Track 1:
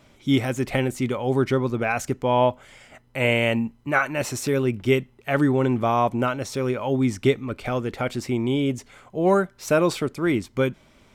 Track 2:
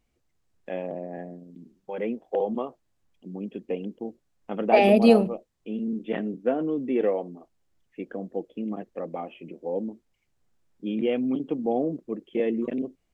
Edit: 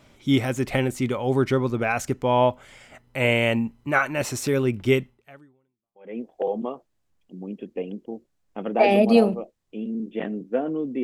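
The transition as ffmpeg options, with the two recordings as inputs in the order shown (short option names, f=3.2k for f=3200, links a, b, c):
-filter_complex "[0:a]apad=whole_dur=11.03,atrim=end=11.03,atrim=end=6.2,asetpts=PTS-STARTPTS[a];[1:a]atrim=start=0.99:end=6.96,asetpts=PTS-STARTPTS[b];[a][b]acrossfade=d=1.14:c1=exp:c2=exp"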